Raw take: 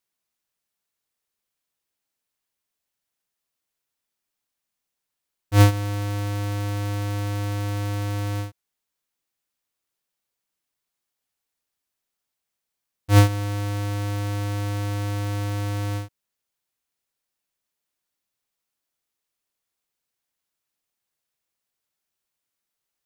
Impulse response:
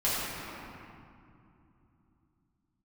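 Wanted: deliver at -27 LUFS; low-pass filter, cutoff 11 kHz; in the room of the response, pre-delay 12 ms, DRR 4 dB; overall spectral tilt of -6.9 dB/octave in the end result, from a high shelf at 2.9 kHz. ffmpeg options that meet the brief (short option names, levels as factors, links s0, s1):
-filter_complex "[0:a]lowpass=11000,highshelf=f=2900:g=-4.5,asplit=2[s0][s1];[1:a]atrim=start_sample=2205,adelay=12[s2];[s1][s2]afir=irnorm=-1:irlink=0,volume=0.168[s3];[s0][s3]amix=inputs=2:normalize=0,volume=0.631"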